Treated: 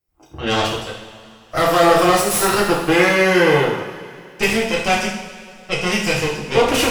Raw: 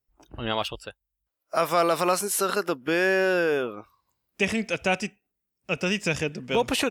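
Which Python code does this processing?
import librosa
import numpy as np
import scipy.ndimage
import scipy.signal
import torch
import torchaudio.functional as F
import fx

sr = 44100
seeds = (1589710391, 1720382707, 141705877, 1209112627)

y = fx.cheby_harmonics(x, sr, harmonics=(8,), levels_db=(-15,), full_scale_db=-7.0)
y = fx.rev_double_slope(y, sr, seeds[0], early_s=0.68, late_s=2.7, knee_db=-15, drr_db=-6.0)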